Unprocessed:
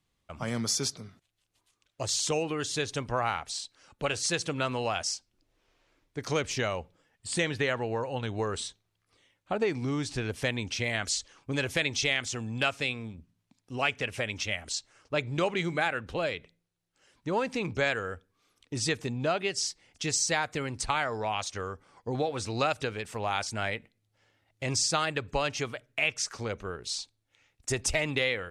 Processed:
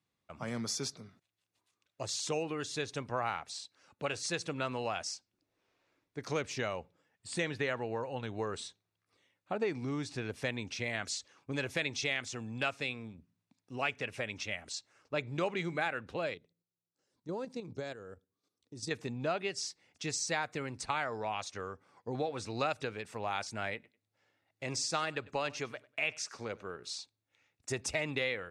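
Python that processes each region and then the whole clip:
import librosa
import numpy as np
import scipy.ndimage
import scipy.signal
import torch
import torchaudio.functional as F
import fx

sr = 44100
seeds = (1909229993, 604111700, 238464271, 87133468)

y = fx.chain(x, sr, fx.level_steps(step_db=10),
    fx.curve_eq(hz=(410.0, 2500.0, 4200.0), db=(0, -13, -1)), at=(16.34, 18.91))
y = fx.chain(y, sr, fx.low_shelf(hz=130.0, db=-6.0),
    fx.echo_feedback(ms=97, feedback_pct=25, wet_db=-21.5), at=(23.74, 26.9))
y = scipy.signal.sosfilt(scipy.signal.butter(2, 110.0, 'highpass', fs=sr, output='sos'), y)
y = fx.high_shelf(y, sr, hz=7200.0, db=-7.0)
y = fx.notch(y, sr, hz=3100.0, q=14.0)
y = y * 10.0 ** (-5.0 / 20.0)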